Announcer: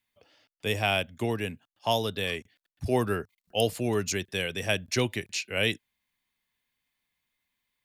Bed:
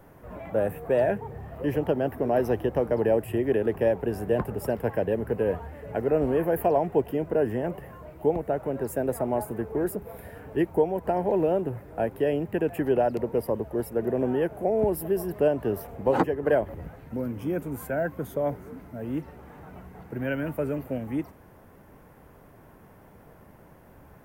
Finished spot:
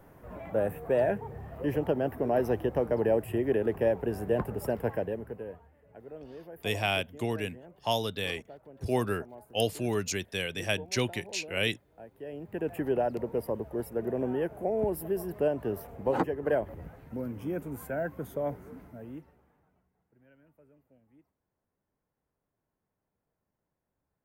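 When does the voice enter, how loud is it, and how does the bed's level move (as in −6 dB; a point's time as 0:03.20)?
6.00 s, −2.5 dB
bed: 0:04.90 −3 dB
0:05.74 −21.5 dB
0:12.09 −21.5 dB
0:12.69 −5 dB
0:18.84 −5 dB
0:19.95 −33 dB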